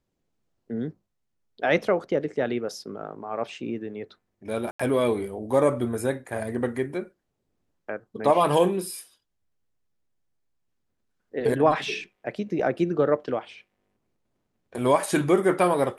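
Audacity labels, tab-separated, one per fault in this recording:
4.710000	4.790000	gap 85 ms

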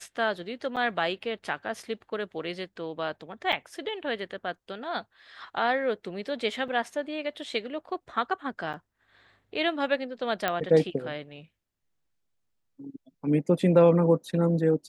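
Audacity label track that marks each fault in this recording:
0.760000	0.770000	gap 6.9 ms
3.520000	3.530000	gap 6.3 ms
6.680000	6.680000	gap 3.5 ms
8.730000	8.740000	gap 8 ms
10.480000	10.480000	pop -12 dBFS

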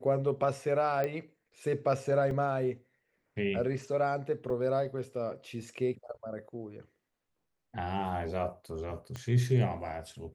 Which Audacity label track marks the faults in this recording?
1.040000	1.040000	pop -20 dBFS
2.310000	2.310000	gap 2.1 ms
4.500000	4.500000	gap 2.7 ms
9.160000	9.160000	pop -26 dBFS

